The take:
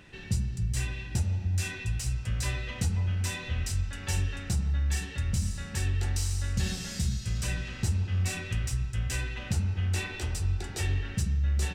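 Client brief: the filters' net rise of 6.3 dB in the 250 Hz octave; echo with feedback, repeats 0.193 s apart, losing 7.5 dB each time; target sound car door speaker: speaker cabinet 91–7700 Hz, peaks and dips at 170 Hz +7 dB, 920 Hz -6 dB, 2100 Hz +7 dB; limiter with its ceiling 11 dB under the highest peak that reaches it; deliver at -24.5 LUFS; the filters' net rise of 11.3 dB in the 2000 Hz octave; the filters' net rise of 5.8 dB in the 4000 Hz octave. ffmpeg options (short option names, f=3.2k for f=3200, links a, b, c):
-af "equalizer=f=250:t=o:g=4.5,equalizer=f=2k:t=o:g=8.5,equalizer=f=4k:t=o:g=4.5,alimiter=level_in=0.5dB:limit=-24dB:level=0:latency=1,volume=-0.5dB,highpass=91,equalizer=f=170:t=q:w=4:g=7,equalizer=f=920:t=q:w=4:g=-6,equalizer=f=2.1k:t=q:w=4:g=7,lowpass=f=7.7k:w=0.5412,lowpass=f=7.7k:w=1.3066,aecho=1:1:193|386|579|772|965:0.422|0.177|0.0744|0.0312|0.0131,volume=7dB"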